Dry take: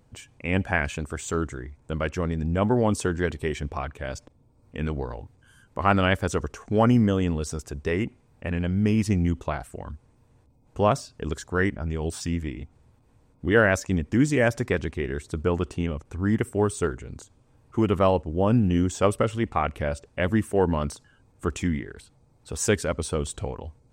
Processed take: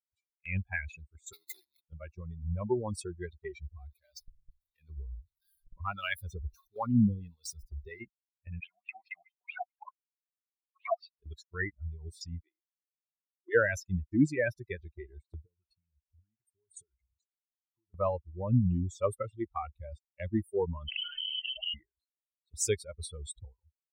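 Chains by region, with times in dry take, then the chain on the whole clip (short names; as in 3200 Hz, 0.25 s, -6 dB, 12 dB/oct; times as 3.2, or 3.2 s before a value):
1.33–1.81 infinite clipping + HPF 240 Hz
3.73–8.01 zero-crossing step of -31 dBFS + harmonic tremolo 1.5 Hz, crossover 520 Hz
8.6–11.16 overdrive pedal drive 32 dB, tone 2300 Hz, clips at -7 dBFS + wah 4.6 Hz 660–3000 Hz, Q 6.3
12.4–13.55 brick-wall FIR high-pass 310 Hz + notches 50/100/150/200/250/300/350/400 Hz + core saturation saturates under 420 Hz
15.41–17.94 compressor 16:1, threshold -30 dBFS + phaser 1.5 Hz, delay 1.2 ms, feedback 40% + low shelf 240 Hz -5.5 dB
20.88–21.74 flipped gate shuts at -21 dBFS, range -25 dB + inverted band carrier 3100 Hz + fast leveller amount 100%
whole clip: per-bin expansion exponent 3; gate -50 dBFS, range -10 dB; dynamic EQ 900 Hz, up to -6 dB, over -45 dBFS, Q 1.4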